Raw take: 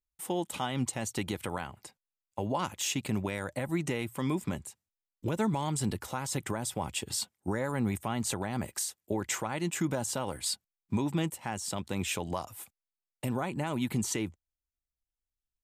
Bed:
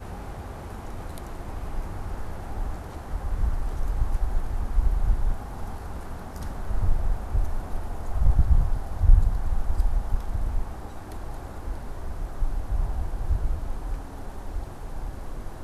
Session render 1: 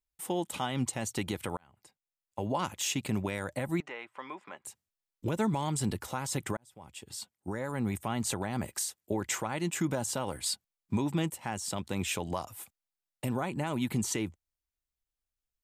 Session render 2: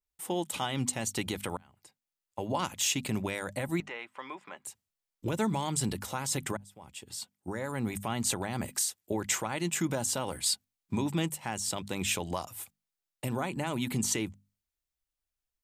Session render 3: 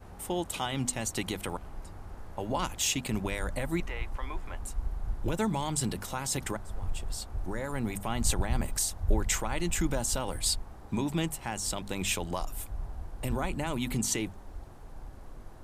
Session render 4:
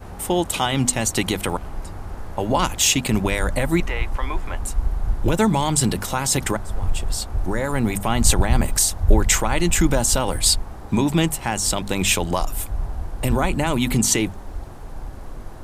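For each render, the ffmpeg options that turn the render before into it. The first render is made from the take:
-filter_complex "[0:a]asettb=1/sr,asplit=3[a][b][c];[a]atrim=end=3.804[d];[b]atrim=start=3.8:end=4.65,asetpts=PTS-STARTPTS,afade=t=in:d=0.004:c=qsin,afade=t=out:st=0.846:d=0.004:c=qsin,highpass=790,lowpass=2.1k[e];[c]atrim=start=4.646[f];[d][e]acrossfade=d=0.004:c1=hsin:c2=qsin[g];[g][f]acrossfade=d=0.004:c1=qsin:c2=hsin,asplit=3[h][i][j];[h]atrim=end=1.57,asetpts=PTS-STARTPTS,afade=t=out:st=1.566:d=0.004:c=hsin[k];[i]atrim=start=1.57:end=6.57,asetpts=PTS-STARTPTS,afade=t=in:d=0.94,afade=t=out:st=4.996:d=0.004:c=hsin[l];[j]atrim=start=6.57,asetpts=PTS-STARTPTS,afade=t=in:d=1.56[m];[k][l][m]concat=n=3:v=0:a=1"
-af "bandreject=f=50:t=h:w=6,bandreject=f=100:t=h:w=6,bandreject=f=150:t=h:w=6,bandreject=f=200:t=h:w=6,bandreject=f=250:t=h:w=6,adynamicequalizer=threshold=0.00501:dfrequency=2100:dqfactor=0.7:tfrequency=2100:tqfactor=0.7:attack=5:release=100:ratio=0.375:range=2:mode=boostabove:tftype=highshelf"
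-filter_complex "[1:a]volume=-11dB[a];[0:a][a]amix=inputs=2:normalize=0"
-af "volume=11.5dB"

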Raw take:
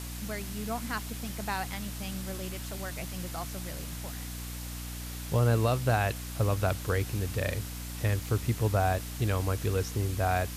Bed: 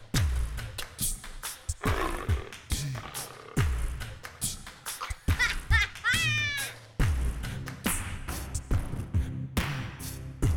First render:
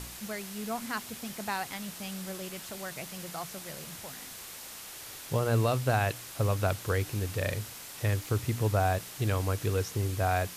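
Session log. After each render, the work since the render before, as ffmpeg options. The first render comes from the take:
-af "bandreject=f=60:t=h:w=4,bandreject=f=120:t=h:w=4,bandreject=f=180:t=h:w=4,bandreject=f=240:t=h:w=4,bandreject=f=300:t=h:w=4"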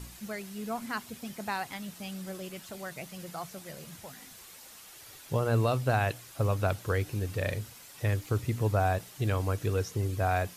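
-af "afftdn=nr=8:nf=-45"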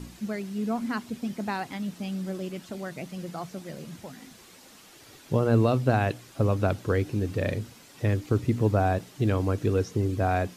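-filter_complex "[0:a]acrossover=split=7600[a][b];[b]acompressor=threshold=-59dB:ratio=4:attack=1:release=60[c];[a][c]amix=inputs=2:normalize=0,equalizer=f=260:w=0.8:g=10.5"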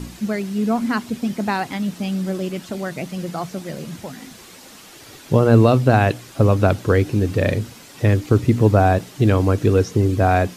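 -af "volume=9dB,alimiter=limit=-1dB:level=0:latency=1"

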